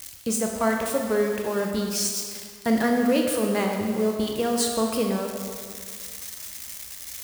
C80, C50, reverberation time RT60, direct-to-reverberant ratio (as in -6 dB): 4.0 dB, 3.0 dB, 2.0 s, 1.5 dB